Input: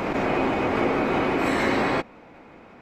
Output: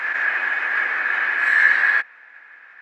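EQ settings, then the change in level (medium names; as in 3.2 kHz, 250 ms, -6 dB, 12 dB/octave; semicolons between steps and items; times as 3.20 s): resonant high-pass 1.7 kHz, resonance Q 16; tilt EQ -2.5 dB/octave; 0.0 dB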